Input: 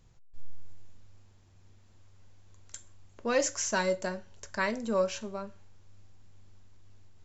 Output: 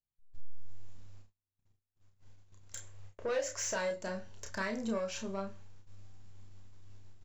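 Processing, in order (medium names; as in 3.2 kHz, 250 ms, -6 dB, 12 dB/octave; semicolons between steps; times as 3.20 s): gate -51 dBFS, range -39 dB; 2.75–3.91 s: graphic EQ 125/250/500/2000 Hz +7/-10/+9/+5 dB; compression 3:1, threshold -33 dBFS, peak gain reduction 13.5 dB; saturation -29 dBFS, distortion -16 dB; early reflections 31 ms -4.5 dB, 49 ms -18 dB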